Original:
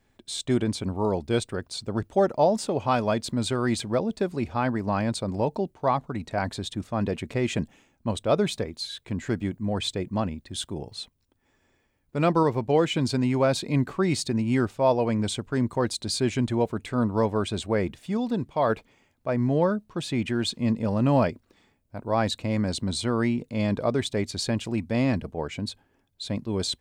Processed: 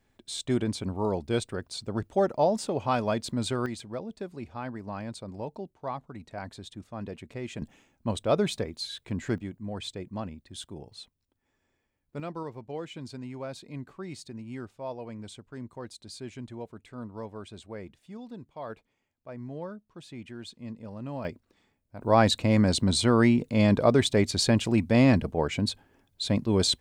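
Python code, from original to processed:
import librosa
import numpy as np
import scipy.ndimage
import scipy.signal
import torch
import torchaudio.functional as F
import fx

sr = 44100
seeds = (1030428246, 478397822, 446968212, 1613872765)

y = fx.gain(x, sr, db=fx.steps((0.0, -3.0), (3.66, -11.0), (7.62, -2.0), (9.38, -8.5), (12.2, -15.5), (21.25, -6.0), (22.01, 4.0)))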